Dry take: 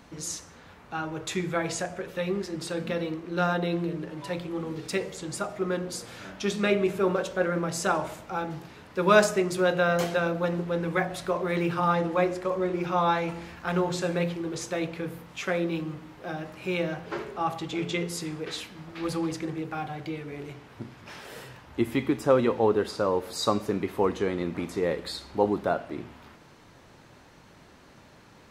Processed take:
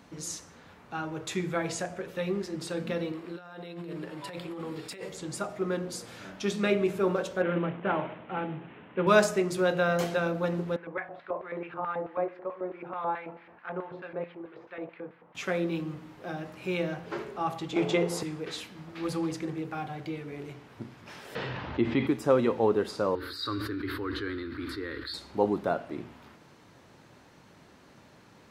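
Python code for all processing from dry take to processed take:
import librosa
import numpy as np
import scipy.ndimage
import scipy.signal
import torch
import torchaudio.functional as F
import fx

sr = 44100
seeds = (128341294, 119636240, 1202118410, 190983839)

y = fx.chain(x, sr, fx.low_shelf(hz=390.0, db=-8.5),
    fx.notch(hz=6100.0, q=5.5),
    fx.over_compress(threshold_db=-38.0, ratio=-1.0), at=(3.12, 5.09))
y = fx.chain(y, sr, fx.cvsd(bps=16000),
    fx.highpass(hz=160.0, slope=12),
    fx.low_shelf(hz=240.0, db=6.5), at=(7.42, 9.07))
y = fx.chain(y, sr, fx.filter_lfo_bandpass(shape='square', hz=4.6, low_hz=700.0, high_hz=2000.0, q=1.1),
    fx.air_absorb(metres=390.0), at=(10.76, 15.35))
y = fx.chain(y, sr, fx.peak_eq(hz=710.0, db=14.5, octaves=1.5),
    fx.band_squash(depth_pct=40), at=(17.76, 18.23))
y = fx.chain(y, sr, fx.lowpass(hz=4200.0, slope=24),
    fx.env_flatten(amount_pct=50), at=(21.35, 22.07))
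y = fx.chain(y, sr, fx.curve_eq(hz=(110.0, 190.0, 290.0, 710.0, 1500.0, 2500.0, 4400.0, 6300.0, 13000.0), db=(0, -27, 0, -26, 6, -9, 3, -22, -8)),
    fx.sustainer(db_per_s=20.0), at=(23.15, 25.14))
y = fx.highpass(y, sr, hz=200.0, slope=6)
y = fx.low_shelf(y, sr, hz=260.0, db=7.5)
y = y * 10.0 ** (-3.0 / 20.0)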